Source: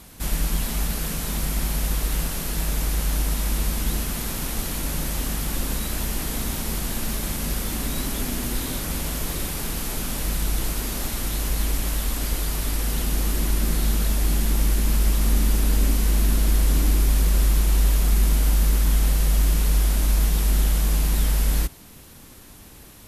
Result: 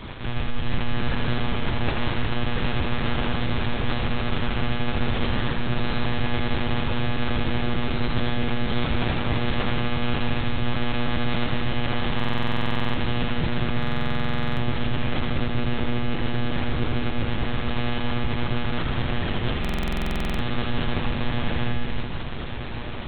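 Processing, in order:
in parallel at +3 dB: brickwall limiter −19.5 dBFS, peak gain reduction 10 dB
on the sum: speech leveller 0.5 s
mains-hum notches 50/100/150/200 Hz
convolution reverb RT60 1.0 s, pre-delay 17 ms, DRR −6.5 dB
reversed playback
downward compressor 6 to 1, threshold −21 dBFS, peak gain reduction 17 dB
reversed playback
one-pitch LPC vocoder at 8 kHz 120 Hz
echo with a time of its own for lows and highs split 520 Hz, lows 187 ms, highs 81 ms, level −6 dB
buffer that repeats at 0:12.15/0:13.78/0:19.60, samples 2,048, times 16

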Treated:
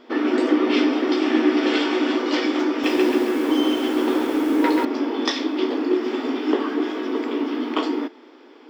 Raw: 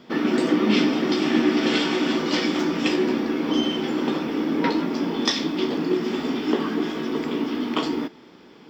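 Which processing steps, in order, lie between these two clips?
linear-phase brick-wall high-pass 240 Hz
high-shelf EQ 4,100 Hz −10 dB
0:02.70–0:04.85: feedback echo at a low word length 135 ms, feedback 55%, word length 7 bits, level −3.5 dB
level +2.5 dB

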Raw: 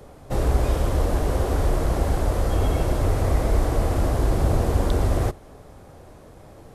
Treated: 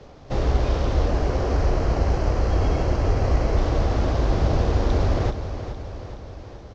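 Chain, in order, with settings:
variable-slope delta modulation 32 kbit/s
0:01.08–0:03.57: parametric band 3,600 Hz −10.5 dB 0.22 octaves
repeating echo 422 ms, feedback 58%, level −10.5 dB

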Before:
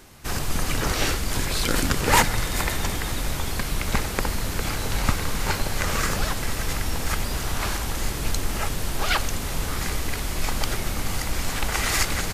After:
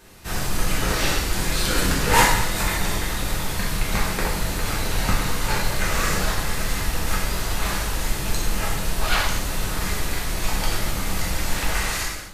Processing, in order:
fade-out on the ending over 0.68 s
reverb whose tail is shaped and stops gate 280 ms falling, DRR −6 dB
level −4.5 dB

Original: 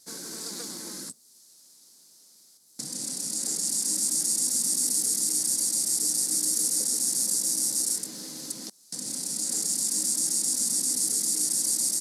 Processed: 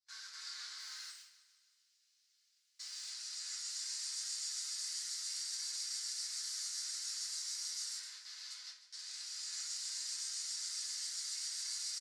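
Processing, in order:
0:00.78–0:03.09: spike at every zero crossing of −35 dBFS
noise gate with hold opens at −28 dBFS
high-pass filter 1,500 Hz 24 dB per octave
high-frequency loss of the air 170 metres
repeating echo 154 ms, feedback 56%, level −15 dB
convolution reverb RT60 0.50 s, pre-delay 5 ms, DRR −8.5 dB
level −8 dB

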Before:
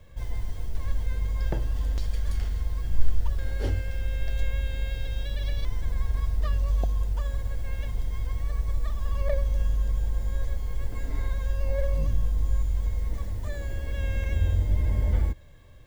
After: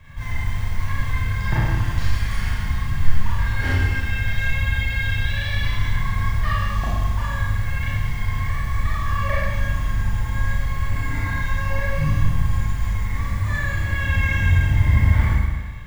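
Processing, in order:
octave-band graphic EQ 125/500/1,000/2,000 Hz +10/−11/+8/+11 dB
four-comb reverb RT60 1.4 s, combs from 27 ms, DRR −7.5 dB

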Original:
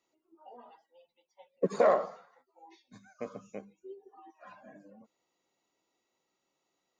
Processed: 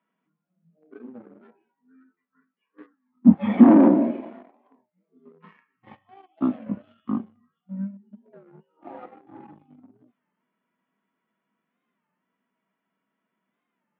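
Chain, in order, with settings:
flat-topped bell 2,900 Hz +11 dB 2.5 octaves
leveller curve on the samples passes 2
high-pass with resonance 430 Hz, resonance Q 4.9
high-frequency loss of the air 150 metres
wrong playback speed 15 ips tape played at 7.5 ips
wow of a warped record 33 1/3 rpm, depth 160 cents
level −1 dB

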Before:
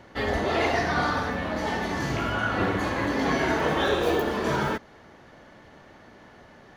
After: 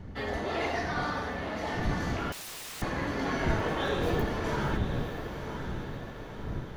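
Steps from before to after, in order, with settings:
wind on the microphone 160 Hz −30 dBFS
feedback delay with all-pass diffusion 1,005 ms, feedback 51%, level −8 dB
0:02.32–0:02.82: wrap-around overflow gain 30 dB
level −7 dB

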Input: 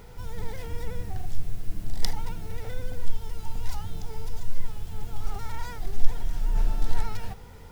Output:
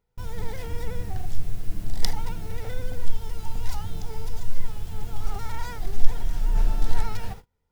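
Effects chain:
noise gate −37 dBFS, range −33 dB
level +2.5 dB

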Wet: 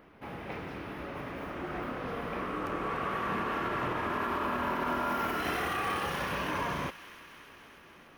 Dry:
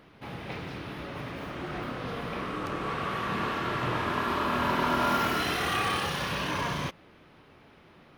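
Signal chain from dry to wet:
graphic EQ with 10 bands 125 Hz −7 dB, 4,000 Hz −9 dB, 8,000 Hz −5 dB
brickwall limiter −23 dBFS, peak gain reduction 7.5 dB
delay with a high-pass on its return 293 ms, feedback 73%, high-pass 1,700 Hz, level −13 dB

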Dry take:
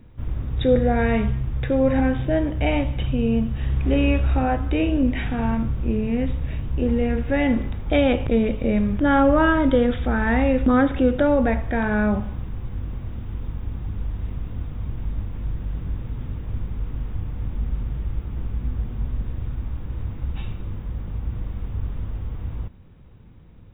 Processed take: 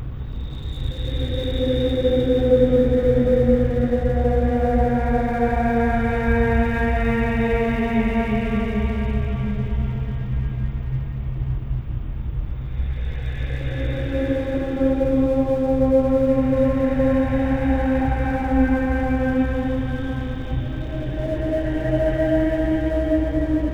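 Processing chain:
extreme stretch with random phases 12×, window 0.25 s, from 0:00.49
dead-zone distortion −44 dBFS

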